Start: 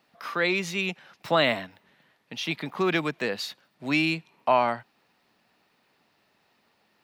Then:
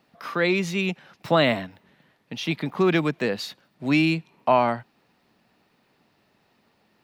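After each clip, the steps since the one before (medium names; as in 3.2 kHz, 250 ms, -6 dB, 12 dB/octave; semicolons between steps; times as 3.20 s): bass shelf 450 Hz +8.5 dB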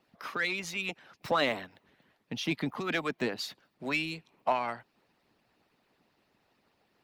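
harmonic-percussive split harmonic -16 dB; in parallel at -4.5 dB: saturation -27.5 dBFS, distortion -7 dB; on the sum: trim -5.5 dB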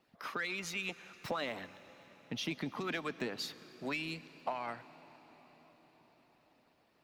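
compression, threshold -32 dBFS, peak gain reduction 9.5 dB; reverberation RT60 5.9 s, pre-delay 93 ms, DRR 15.5 dB; trim -2 dB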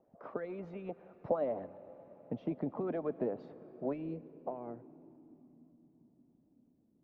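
low-pass sweep 610 Hz -> 250 Hz, 3.80–5.75 s; trim +1 dB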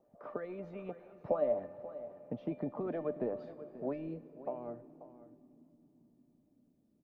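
feedback comb 600 Hz, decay 0.34 s, mix 80%; delay 536 ms -15 dB; trim +12 dB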